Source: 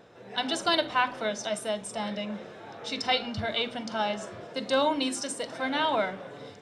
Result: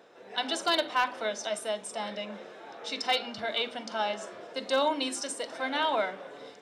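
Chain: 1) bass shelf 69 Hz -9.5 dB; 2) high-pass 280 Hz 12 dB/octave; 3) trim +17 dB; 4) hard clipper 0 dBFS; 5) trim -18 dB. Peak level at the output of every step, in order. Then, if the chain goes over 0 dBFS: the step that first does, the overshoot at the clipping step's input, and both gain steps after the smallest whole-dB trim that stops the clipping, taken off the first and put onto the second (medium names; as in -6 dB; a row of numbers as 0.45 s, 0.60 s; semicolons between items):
-12.0 dBFS, -12.5 dBFS, +4.5 dBFS, 0.0 dBFS, -18.0 dBFS; step 3, 4.5 dB; step 3 +12 dB, step 5 -13 dB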